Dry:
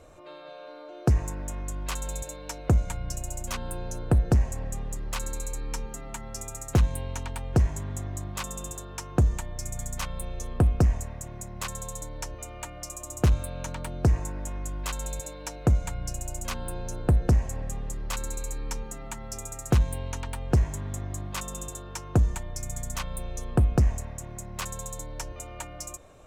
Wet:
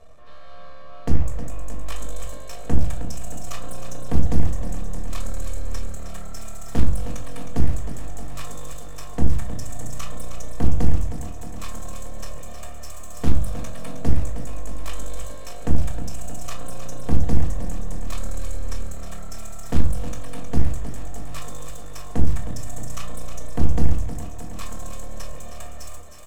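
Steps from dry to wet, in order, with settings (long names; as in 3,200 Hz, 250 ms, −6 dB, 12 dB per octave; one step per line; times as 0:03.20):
comb filter 1.7 ms, depth 75%
half-wave rectification
on a send: feedback echo with a high-pass in the loop 313 ms, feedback 79%, high-pass 170 Hz, level −9 dB
on the sum: rectangular room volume 290 cubic metres, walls furnished, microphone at 1.6 metres
highs frequency-modulated by the lows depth 0.61 ms
level −3 dB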